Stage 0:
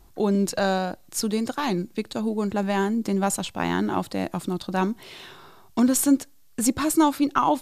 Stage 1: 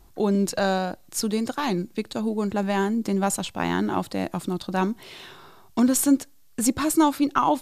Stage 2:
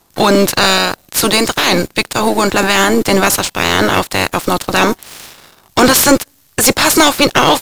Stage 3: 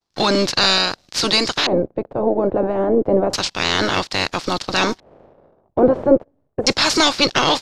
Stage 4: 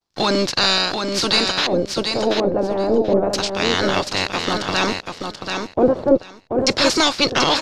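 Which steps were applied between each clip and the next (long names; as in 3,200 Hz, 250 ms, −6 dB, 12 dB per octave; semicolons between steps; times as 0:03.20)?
no processing that can be heard
ceiling on every frequency bin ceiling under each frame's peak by 24 dB; leveller curve on the samples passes 3; level +3 dB
downward expander −43 dBFS; auto-filter low-pass square 0.3 Hz 570–5,000 Hz; level −7.5 dB
repeating echo 734 ms, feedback 16%, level −5.5 dB; level −1.5 dB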